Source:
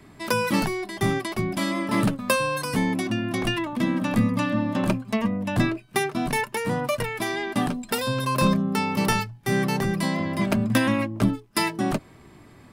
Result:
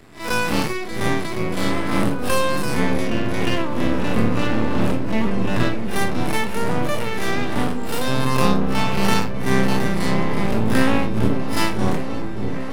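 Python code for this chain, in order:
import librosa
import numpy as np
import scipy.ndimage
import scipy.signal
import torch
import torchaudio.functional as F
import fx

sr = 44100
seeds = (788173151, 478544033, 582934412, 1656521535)

y = fx.spec_blur(x, sr, span_ms=96.0)
y = np.maximum(y, 0.0)
y = fx.echo_opening(y, sr, ms=603, hz=400, octaves=1, feedback_pct=70, wet_db=-6)
y = F.gain(torch.from_numpy(y), 8.0).numpy()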